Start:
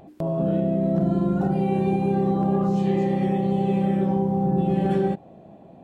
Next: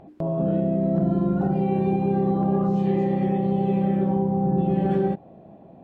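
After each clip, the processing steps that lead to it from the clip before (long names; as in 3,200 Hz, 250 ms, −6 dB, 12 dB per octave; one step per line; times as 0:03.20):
low-pass filter 2,000 Hz 6 dB per octave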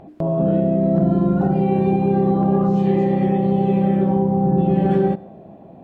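convolution reverb RT60 0.80 s, pre-delay 45 ms, DRR 20 dB
level +5 dB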